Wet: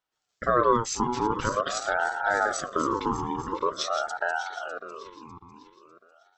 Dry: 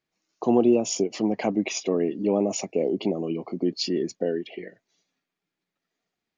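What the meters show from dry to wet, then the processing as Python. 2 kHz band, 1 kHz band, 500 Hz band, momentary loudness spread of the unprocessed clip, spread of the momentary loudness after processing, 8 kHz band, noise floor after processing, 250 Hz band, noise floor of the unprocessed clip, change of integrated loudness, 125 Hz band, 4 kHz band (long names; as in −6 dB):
+12.0 dB, +11.0 dB, −4.0 dB, 9 LU, 15 LU, −2.0 dB, −80 dBFS, −9.0 dB, below −85 dBFS, −1.5 dB, −2.0 dB, −2.0 dB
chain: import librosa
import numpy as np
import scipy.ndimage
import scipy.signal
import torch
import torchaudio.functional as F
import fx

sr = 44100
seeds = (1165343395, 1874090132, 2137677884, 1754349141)

y = fx.reverse_delay_fb(x, sr, ms=300, feedback_pct=59, wet_db=-9.0)
y = fx.ring_lfo(y, sr, carrier_hz=870.0, swing_pct=30, hz=0.46)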